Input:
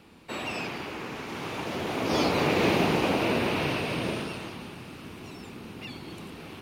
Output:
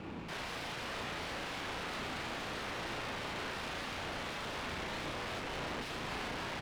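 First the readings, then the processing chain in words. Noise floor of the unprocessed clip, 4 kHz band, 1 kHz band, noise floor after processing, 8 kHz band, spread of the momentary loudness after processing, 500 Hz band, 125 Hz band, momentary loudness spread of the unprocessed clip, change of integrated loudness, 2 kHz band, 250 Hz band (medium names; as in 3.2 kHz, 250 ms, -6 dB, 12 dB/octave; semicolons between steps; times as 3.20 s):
-44 dBFS, -6.5 dB, -8.5 dB, -43 dBFS, -5.5 dB, 1 LU, -13.5 dB, -12.5 dB, 18 LU, -11.5 dB, -6.5 dB, -15.0 dB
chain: treble shelf 3.6 kHz -6 dB; compression, threshold -36 dBFS, peak gain reduction 15 dB; peak limiter -36.5 dBFS, peak gain reduction 10 dB; integer overflow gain 43.5 dB; distance through air 170 m; doubling 35 ms -3 dB; sliding maximum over 3 samples; trim +9.5 dB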